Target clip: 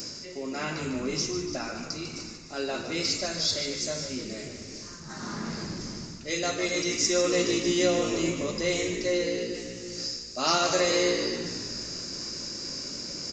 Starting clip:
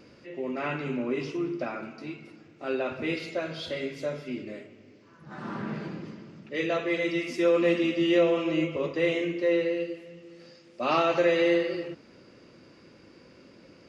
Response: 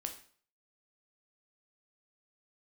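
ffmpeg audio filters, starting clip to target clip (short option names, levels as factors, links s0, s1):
-filter_complex "[0:a]equalizer=f=490:t=o:w=1.5:g=-3.5,areverse,acompressor=mode=upward:threshold=0.0224:ratio=2.5,areverse,asetrate=45938,aresample=44100,asplit=2[s0][s1];[s1]asplit=7[s2][s3][s4][s5][s6][s7][s8];[s2]adelay=149,afreqshift=-60,volume=0.355[s9];[s3]adelay=298,afreqshift=-120,volume=0.214[s10];[s4]adelay=447,afreqshift=-180,volume=0.127[s11];[s5]adelay=596,afreqshift=-240,volume=0.0767[s12];[s6]adelay=745,afreqshift=-300,volume=0.0462[s13];[s7]adelay=894,afreqshift=-360,volume=0.0275[s14];[s8]adelay=1043,afreqshift=-420,volume=0.0166[s15];[s9][s10][s11][s12][s13][s14][s15]amix=inputs=7:normalize=0[s16];[s0][s16]amix=inputs=2:normalize=0,aresample=16000,aresample=44100,aexciter=amount=9.1:drive=8.3:freq=4600"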